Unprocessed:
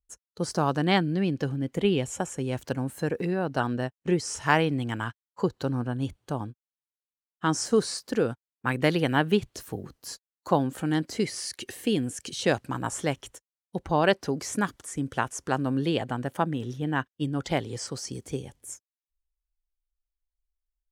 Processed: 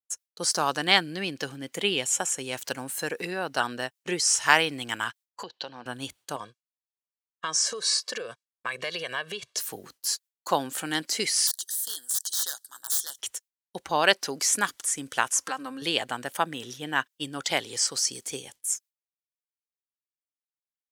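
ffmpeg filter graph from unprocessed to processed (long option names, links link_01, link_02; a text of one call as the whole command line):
ffmpeg -i in.wav -filter_complex "[0:a]asettb=1/sr,asplit=3[link_01][link_02][link_03];[link_01]atrim=end=5.434[link_04];[link_02]atrim=start=5.43:end=5.86,asetpts=PTS-STARTPTS,afade=type=in:duration=0.004:curve=qsin,afade=type=out:start_time=0.426:duration=0.004:curve=qsin,acompressor=threshold=-25dB:ratio=6:attack=3.2:release=140:knee=1:detection=peak,highpass=240,equalizer=frequency=280:width_type=q:width=4:gain=-9,equalizer=frequency=420:width_type=q:width=4:gain=-7,equalizer=frequency=1300:width_type=q:width=4:gain=-10,equalizer=frequency=2100:width_type=q:width=4:gain=-5,equalizer=frequency=3100:width_type=q:width=4:gain=5,lowpass=frequency=4600:width=0.5412,lowpass=frequency=4600:width=1.3066[link_05];[link_03]atrim=start=5.856[link_06];[link_04][link_05]acrossfade=duration=0.004:curve1=hsin:curve2=qsin[link_07];[link_07][link_06]acrossfade=duration=0.004:curve1=qsin:curve2=hsin,asettb=1/sr,asplit=3[link_08][link_09][link_10];[link_08]atrim=end=6.364[link_11];[link_09]atrim=start=6.36:end=9.58,asetpts=PTS-STARTPTS,afade=type=in:duration=0.004:curve=qsin,afade=type=out:start_time=3.216:duration=0.004:curve=qsin,aecho=1:1:1.8:0.83,atrim=end_sample=142002,acompressor=threshold=-28dB:ratio=10:attack=3.2:release=140:knee=1:detection=peak,highpass=150,lowpass=6700[link_12];[link_10]atrim=start=9.576[link_13];[link_11][link_12]acrossfade=duration=0.004:curve1=hsin:curve2=qsin[link_14];[link_14][link_13]acrossfade=duration=0.004:curve1=qsin:curve2=hsin,asettb=1/sr,asplit=3[link_15][link_16][link_17];[link_15]atrim=end=11.474[link_18];[link_16]atrim=start=11.47:end=13.19,asetpts=PTS-STARTPTS,afade=type=in:duration=0.004:curve=qsin,afade=type=out:start_time=1.716:duration=0.004:curve=qsin,aderivative,aeval=exprs='(mod(37.6*val(0)+1,2)-1)/37.6':channel_layout=same,asuperstop=centerf=2400:order=8:qfactor=1.7[link_19];[link_17]atrim=start=13.186[link_20];[link_18][link_19]acrossfade=duration=0.004:curve1=hsin:curve2=qsin[link_21];[link_21][link_20]acrossfade=duration=0.004:curve1=qsin:curve2=hsin,asettb=1/sr,asplit=3[link_22][link_23][link_24];[link_22]atrim=end=15.324[link_25];[link_23]atrim=start=15.32:end=15.82,asetpts=PTS-STARTPTS,afade=type=in:duration=0.004:curve=qsin,afade=type=out:start_time=0.496:duration=0.004:curve=qsin,equalizer=frequency=1100:width=1.4:gain=5.5,aecho=1:1:3.8:0.76,atrim=end_sample=22050,acompressor=threshold=-32dB:ratio=2.5:attack=3.2:release=140:knee=1:detection=peak[link_26];[link_24]atrim=start=15.816[link_27];[link_25][link_26]acrossfade=duration=0.004:curve1=hsin:curve2=qsin[link_28];[link_28][link_27]acrossfade=duration=0.004:curve1=qsin:curve2=hsin,highshelf=frequency=2300:gain=10.5,agate=range=-33dB:threshold=-43dB:ratio=3:detection=peak,highpass=frequency=880:poles=1,volume=2.5dB" out.wav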